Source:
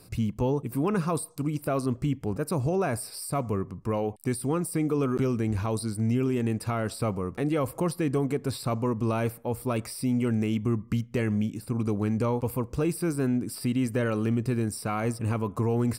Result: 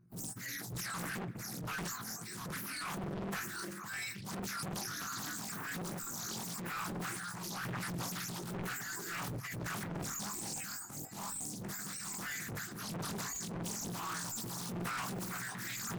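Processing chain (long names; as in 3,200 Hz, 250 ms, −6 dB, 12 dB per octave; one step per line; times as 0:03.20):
frequency axis turned over on the octave scale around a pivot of 1,300 Hz
noise gate with hold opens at −35 dBFS
high-shelf EQ 3,500 Hz −11 dB
in parallel at −1 dB: brickwall limiter −27.5 dBFS, peak gain reduction 10 dB
on the sum: phaser with its sweep stopped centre 1,400 Hz, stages 4
on a send: echo through a band-pass that steps 485 ms, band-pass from 490 Hz, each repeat 1.4 octaves, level −7 dB
on the sum: gain into a clipping stage and back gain 36 dB
chorus effect 0.13 Hz, delay 17 ms, depth 2.8 ms
transient designer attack −8 dB, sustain +8 dB
highs frequency-modulated by the lows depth 0.99 ms
level +2 dB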